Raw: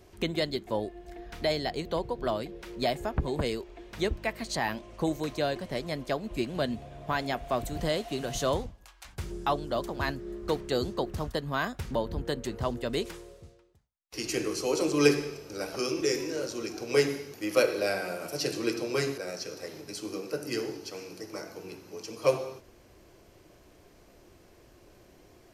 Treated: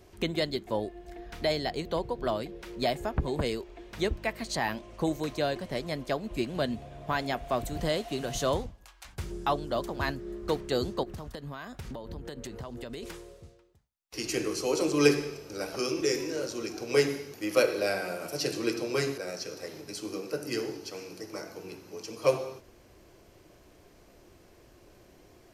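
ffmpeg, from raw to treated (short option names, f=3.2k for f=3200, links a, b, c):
-filter_complex "[0:a]asettb=1/sr,asplit=3[a][b][c];[a]atrim=end=11.034[d];[b]atrim=start=11.03:end=13.03,asetpts=PTS-STARTPTS,afade=t=in:d=0.004:c=qsin,afade=t=out:st=1.996:d=0.004:c=qsin,acompressor=threshold=-35dB:ratio=16:attack=3.2:release=140:knee=1:detection=peak[e];[c]atrim=start=13.026[f];[d][e]acrossfade=d=0.004:c1=hsin:c2=qsin[g];[g][f]acrossfade=d=0.004:c1=qsin:c2=hsin"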